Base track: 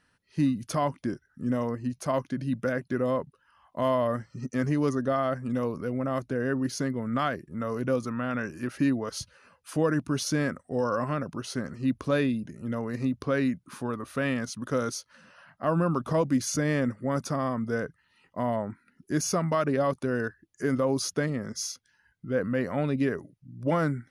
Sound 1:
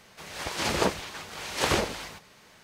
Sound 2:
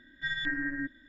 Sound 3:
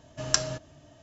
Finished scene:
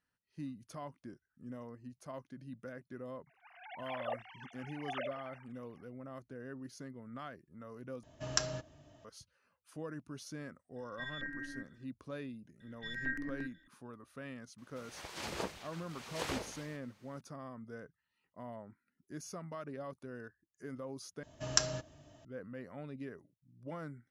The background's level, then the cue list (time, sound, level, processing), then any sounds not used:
base track −18.5 dB
0:03.26: mix in 1 −15 dB + three sine waves on the formant tracks
0:08.03: overwrite with 3 −6 dB + high-shelf EQ 6,200 Hz −6 dB
0:10.76: mix in 2 −11 dB
0:12.60: mix in 2 −4.5 dB + step-sequenced phaser 8.7 Hz 230–5,400 Hz
0:14.58: mix in 1 −14 dB
0:21.23: overwrite with 3 −5 dB

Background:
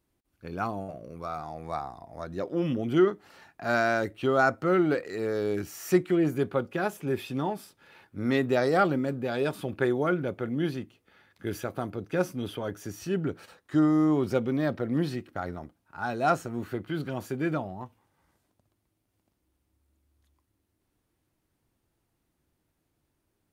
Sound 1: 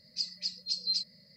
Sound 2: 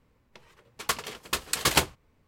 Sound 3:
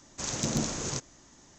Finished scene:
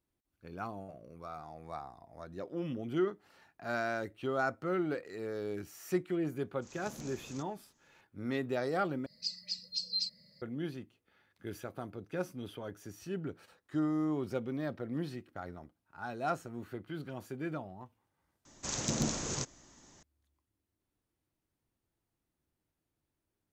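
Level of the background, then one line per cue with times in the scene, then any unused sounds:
background −9.5 dB
0:06.43: mix in 3 −17.5 dB + fade in at the beginning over 0.51 s
0:09.06: overwrite with 1 −3.5 dB
0:18.45: mix in 3 −3 dB
not used: 2

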